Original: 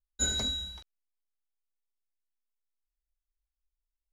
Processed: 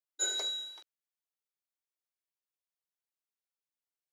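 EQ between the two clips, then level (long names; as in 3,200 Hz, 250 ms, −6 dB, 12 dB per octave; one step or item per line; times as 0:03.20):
linear-phase brick-wall high-pass 300 Hz
−2.5 dB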